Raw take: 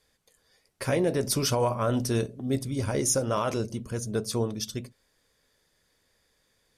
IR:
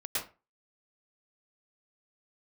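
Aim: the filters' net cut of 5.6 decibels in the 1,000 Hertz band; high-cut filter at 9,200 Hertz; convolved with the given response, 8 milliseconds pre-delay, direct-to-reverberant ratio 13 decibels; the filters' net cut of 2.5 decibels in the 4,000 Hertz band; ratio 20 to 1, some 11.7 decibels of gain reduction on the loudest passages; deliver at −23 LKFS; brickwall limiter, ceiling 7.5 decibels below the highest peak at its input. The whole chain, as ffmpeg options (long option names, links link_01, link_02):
-filter_complex "[0:a]lowpass=9200,equalizer=frequency=1000:width_type=o:gain=-7,equalizer=frequency=4000:width_type=o:gain=-3,acompressor=threshold=-34dB:ratio=20,alimiter=level_in=8dB:limit=-24dB:level=0:latency=1,volume=-8dB,asplit=2[link_01][link_02];[1:a]atrim=start_sample=2205,adelay=8[link_03];[link_02][link_03]afir=irnorm=-1:irlink=0,volume=-18dB[link_04];[link_01][link_04]amix=inputs=2:normalize=0,volume=18dB"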